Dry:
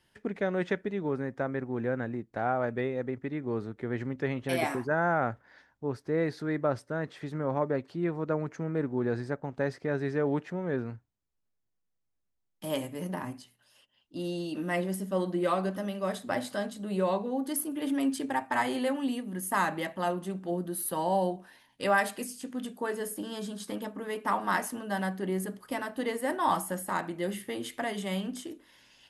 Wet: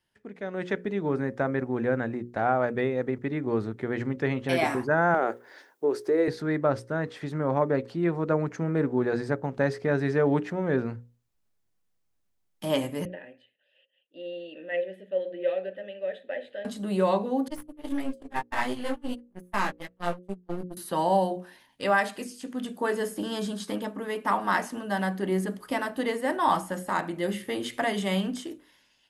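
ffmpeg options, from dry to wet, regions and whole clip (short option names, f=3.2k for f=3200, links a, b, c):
-filter_complex "[0:a]asettb=1/sr,asplit=3[a][b][c];[a]atrim=end=5.144[d];[b]atrim=start=5.14:end=6.28,asetpts=PTS-STARTPTS,afade=t=in:d=0.004:c=qsin,afade=t=out:st=1.136:d=0.004:c=qsin,highpass=f=380:t=q:w=3.5,aemphasis=mode=production:type=50kf,acompressor=threshold=-25dB:ratio=3:attack=3.2:release=140:knee=1:detection=peak[e];[c]atrim=start=6.276[f];[d][e]acrossfade=d=0.004:c1=hsin:c2=qsin[g];[g][f]acrossfade=d=0.004:c1=qsin:c2=hsin,asettb=1/sr,asplit=3[h][i][j];[h]atrim=end=13.054[k];[i]atrim=start=13.05:end=16.65,asetpts=PTS-STARTPTS,afade=t=in:d=0.004:c=qsin,afade=t=out:st=3.596:d=0.004:c=qsin,asplit=3[l][m][n];[l]bandpass=f=530:t=q:w=8,volume=0dB[o];[m]bandpass=f=1.84k:t=q:w=8,volume=-6dB[p];[n]bandpass=f=2.48k:t=q:w=8,volume=-9dB[q];[o][p][q]amix=inputs=3:normalize=0,highshelf=f=4.3k:t=q:w=3:g=-7[r];[j]atrim=start=16.646[s];[k][r]acrossfade=d=0.004:c1=hsin:c2=qsin[t];[t][s]acrossfade=d=0.004:c1=qsin:c2=hsin,asettb=1/sr,asplit=3[u][v][w];[u]atrim=end=17.484[x];[v]atrim=start=17.48:end=20.77,asetpts=PTS-STARTPTS,afade=t=in:d=0.004:c=qsin,afade=t=out:st=3.286:d=0.004:c=qsin,aeval=exprs='if(lt(val(0),0),0.251*val(0),val(0))':c=same,flanger=delay=16:depth=4.6:speed=1.6,agate=range=-37dB:threshold=-36dB:ratio=16:release=100:detection=peak[y];[w]atrim=start=20.766[z];[x][y]acrossfade=d=0.004:c1=hsin:c2=qsin[aa];[aa][z]acrossfade=d=0.004:c1=qsin:c2=hsin,acrossover=split=7000[ab][ac];[ac]acompressor=threshold=-54dB:ratio=4:attack=1:release=60[ad];[ab][ad]amix=inputs=2:normalize=0,bandreject=f=60:t=h:w=6,bandreject=f=120:t=h:w=6,bandreject=f=180:t=h:w=6,bandreject=f=240:t=h:w=6,bandreject=f=300:t=h:w=6,bandreject=f=360:t=h:w=6,bandreject=f=420:t=h:w=6,bandreject=f=480:t=h:w=6,bandreject=f=540:t=h:w=6,dynaudnorm=f=150:g=9:m=16dB,volume=-9dB"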